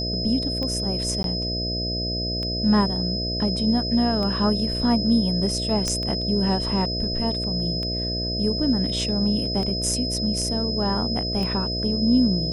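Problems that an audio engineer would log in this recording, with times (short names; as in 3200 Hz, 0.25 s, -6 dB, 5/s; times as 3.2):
buzz 60 Hz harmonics 11 -29 dBFS
tick 33 1/3 rpm -18 dBFS
tone 5100 Hz -27 dBFS
1.23–1.24 gap 12 ms
5.88 pop -11 dBFS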